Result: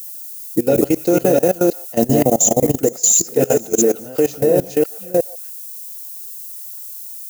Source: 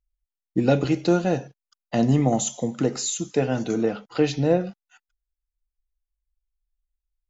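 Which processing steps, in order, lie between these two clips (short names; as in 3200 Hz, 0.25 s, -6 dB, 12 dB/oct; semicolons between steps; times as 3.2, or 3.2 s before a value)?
reverse delay 0.347 s, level -1.5 dB; ten-band EQ 500 Hz +8 dB, 1000 Hz -7 dB, 4000 Hz -12 dB; added noise violet -45 dBFS; tone controls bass -6 dB, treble +14 dB; delay with a stepping band-pass 0.148 s, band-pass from 950 Hz, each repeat 1.4 oct, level -10 dB; level quantiser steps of 20 dB; gain +7.5 dB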